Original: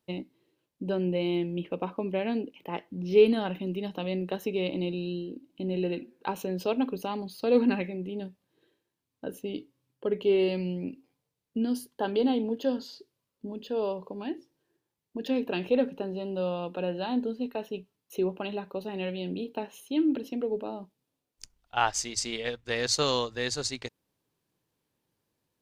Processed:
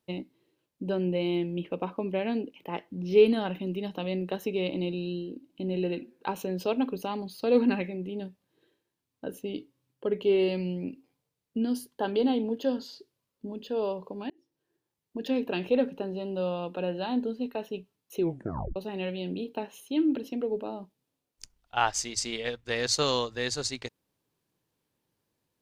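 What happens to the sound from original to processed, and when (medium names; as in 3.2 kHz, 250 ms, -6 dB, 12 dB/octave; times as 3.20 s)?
14.30–15.17 s: fade in equal-power
18.21 s: tape stop 0.55 s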